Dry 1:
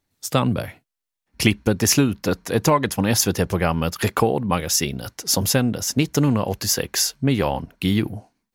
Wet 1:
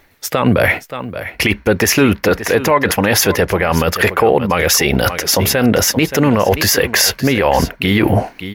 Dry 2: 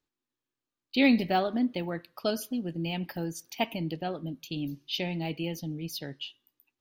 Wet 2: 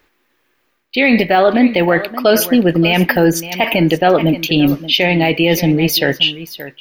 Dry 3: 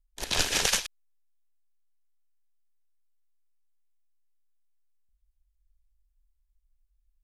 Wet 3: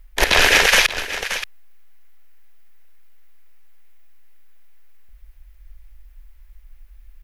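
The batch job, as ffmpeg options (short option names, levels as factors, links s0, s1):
-af "equalizer=f=125:t=o:w=1:g=-7,equalizer=f=250:t=o:w=1:g=-4,equalizer=f=500:t=o:w=1:g=4,equalizer=f=2000:t=o:w=1:g=8,equalizer=f=4000:t=o:w=1:g=-3,equalizer=f=8000:t=o:w=1:g=-9,areverse,acompressor=threshold=0.02:ratio=6,areverse,aecho=1:1:575:0.158,alimiter=level_in=25.1:limit=0.891:release=50:level=0:latency=1,volume=0.891"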